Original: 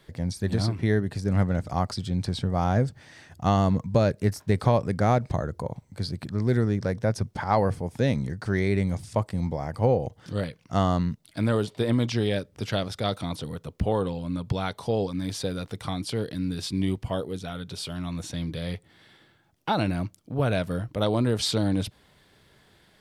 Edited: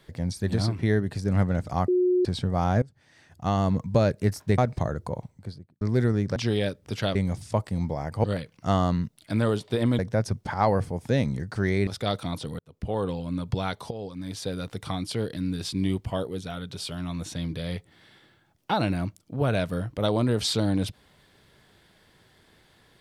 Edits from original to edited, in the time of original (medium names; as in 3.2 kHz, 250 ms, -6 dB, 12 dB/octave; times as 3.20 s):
1.88–2.25 s: bleep 362 Hz -18.5 dBFS
2.82–3.86 s: fade in linear, from -21.5 dB
4.58–5.11 s: delete
5.69–6.34 s: studio fade out
6.89–8.77 s: swap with 12.06–12.85 s
9.86–10.31 s: delete
13.57–14.10 s: fade in
14.89–15.65 s: fade in, from -13.5 dB